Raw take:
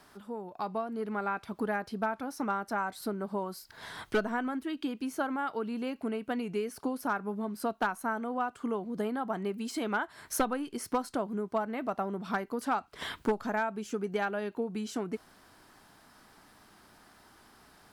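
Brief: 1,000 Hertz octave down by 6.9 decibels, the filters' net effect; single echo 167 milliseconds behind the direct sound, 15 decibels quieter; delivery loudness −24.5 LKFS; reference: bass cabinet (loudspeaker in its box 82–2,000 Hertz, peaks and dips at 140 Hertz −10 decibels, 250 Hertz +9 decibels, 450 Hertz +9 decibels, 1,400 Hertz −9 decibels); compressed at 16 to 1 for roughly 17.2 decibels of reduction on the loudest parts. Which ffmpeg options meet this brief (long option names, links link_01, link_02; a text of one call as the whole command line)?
ffmpeg -i in.wav -af "equalizer=frequency=1000:width_type=o:gain=-8,acompressor=threshold=-42dB:ratio=16,highpass=frequency=82:width=0.5412,highpass=frequency=82:width=1.3066,equalizer=frequency=140:width_type=q:width=4:gain=-10,equalizer=frequency=250:width_type=q:width=4:gain=9,equalizer=frequency=450:width_type=q:width=4:gain=9,equalizer=frequency=1400:width_type=q:width=4:gain=-9,lowpass=frequency=2000:width=0.5412,lowpass=frequency=2000:width=1.3066,aecho=1:1:167:0.178,volume=17.5dB" out.wav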